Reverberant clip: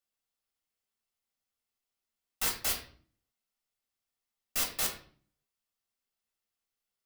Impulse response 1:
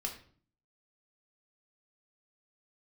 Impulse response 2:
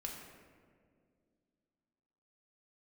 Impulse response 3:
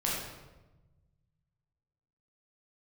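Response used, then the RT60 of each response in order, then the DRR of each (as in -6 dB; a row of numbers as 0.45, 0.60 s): 1; 0.50, 2.1, 1.1 s; 0.0, -1.0, -6.0 dB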